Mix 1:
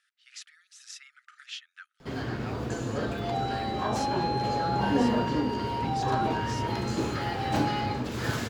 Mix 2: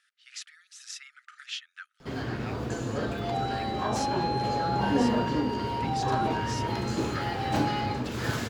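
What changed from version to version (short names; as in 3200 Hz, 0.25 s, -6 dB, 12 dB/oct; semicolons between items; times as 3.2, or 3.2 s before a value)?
speech +3.5 dB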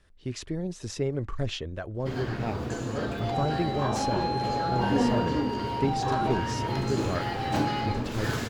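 speech: remove brick-wall FIR high-pass 1200 Hz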